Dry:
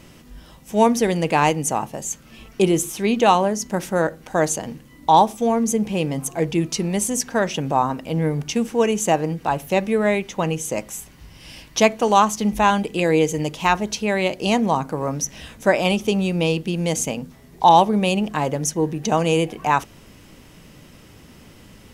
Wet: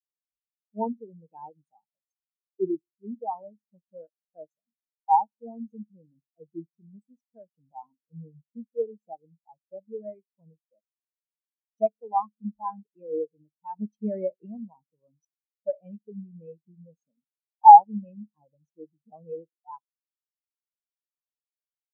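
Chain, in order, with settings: 13.76–14.46 s: waveshaping leveller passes 2; bucket-brigade echo 66 ms, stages 2048, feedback 76%, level -23.5 dB; spectral contrast expander 4:1; trim +1 dB

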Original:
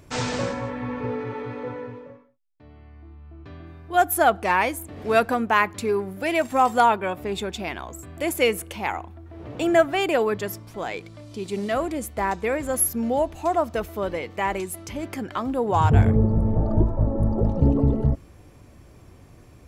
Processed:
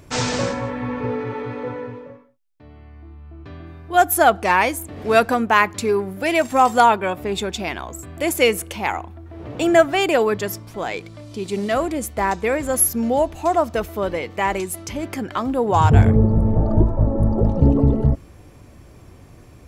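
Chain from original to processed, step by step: dynamic bell 6 kHz, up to +4 dB, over -43 dBFS, Q 1.1; trim +4 dB

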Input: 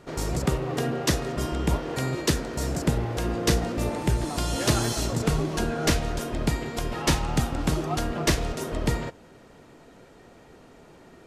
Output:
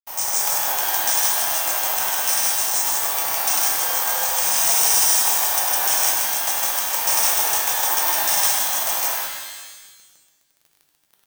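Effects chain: comb filter that takes the minimum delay 0.31 ms; steep high-pass 1.1 kHz 48 dB/octave; high-order bell 2.9 kHz -13 dB; frequency shift -370 Hz; companded quantiser 4-bit; vibrato 1.2 Hz 17 cents; loudspeakers at several distances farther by 34 m -6 dB, 54 m 0 dB; careless resampling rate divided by 3×, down filtered, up zero stuff; loudness maximiser +16.5 dB; pitch-shifted reverb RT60 1.2 s, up +12 st, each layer -2 dB, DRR 2 dB; trim -3.5 dB

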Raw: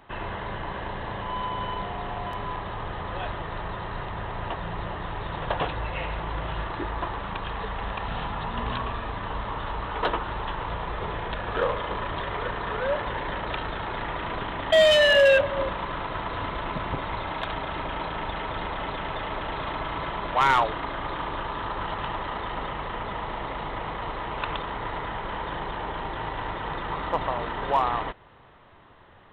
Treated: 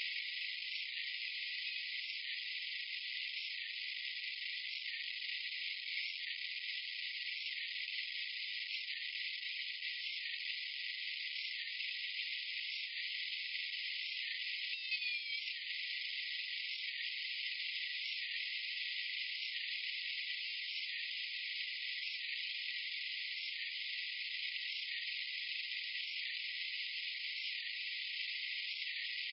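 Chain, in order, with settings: one-bit comparator; reverb removal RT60 0.51 s; pitch shift -3 st; brick-wall FIR band-pass 1.9–5.2 kHz; feedback echo behind a high-pass 136 ms, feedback 78%, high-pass 3 kHz, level -10.5 dB; on a send at -18.5 dB: reverberation RT60 0.50 s, pre-delay 79 ms; on the sum: warped record 45 rpm, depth 100 cents; trim -3.5 dB

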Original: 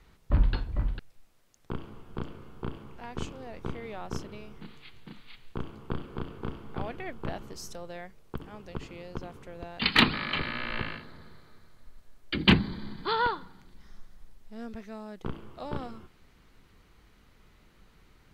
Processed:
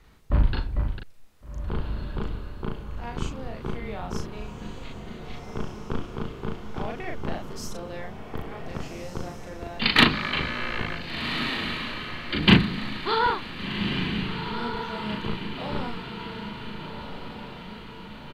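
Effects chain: doubling 38 ms -2.5 dB; echo that smears into a reverb 1505 ms, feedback 54%, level -7 dB; trim +2 dB

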